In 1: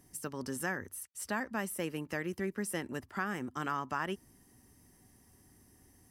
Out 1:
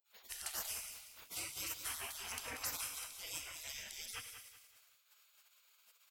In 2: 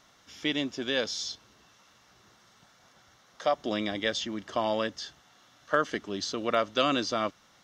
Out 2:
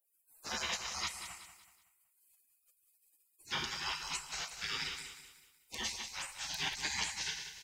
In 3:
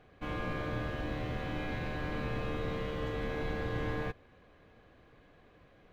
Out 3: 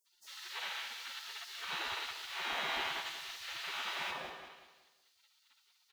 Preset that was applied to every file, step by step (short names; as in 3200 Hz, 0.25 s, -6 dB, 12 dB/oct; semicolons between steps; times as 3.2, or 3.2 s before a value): bands offset in time highs, lows 60 ms, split 1400 Hz; Schroeder reverb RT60 0.93 s, combs from 26 ms, DRR 6 dB; spectral gate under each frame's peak -30 dB weak; on a send: feedback echo 0.187 s, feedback 37%, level -10 dB; on the sum: gain +12 dB